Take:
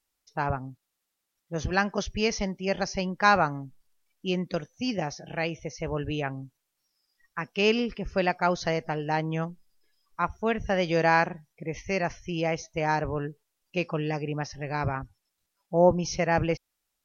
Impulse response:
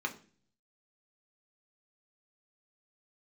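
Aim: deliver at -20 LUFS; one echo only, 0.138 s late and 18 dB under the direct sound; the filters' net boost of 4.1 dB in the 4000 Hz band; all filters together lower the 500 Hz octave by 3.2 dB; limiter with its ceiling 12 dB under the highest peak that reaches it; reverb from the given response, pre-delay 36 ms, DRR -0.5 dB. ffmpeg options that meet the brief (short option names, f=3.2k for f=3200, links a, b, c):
-filter_complex "[0:a]equalizer=f=500:t=o:g=-4,equalizer=f=4k:t=o:g=6,alimiter=limit=-18.5dB:level=0:latency=1,aecho=1:1:138:0.126,asplit=2[a][b];[1:a]atrim=start_sample=2205,adelay=36[c];[b][c]afir=irnorm=-1:irlink=0,volume=-4dB[d];[a][d]amix=inputs=2:normalize=0,volume=9dB"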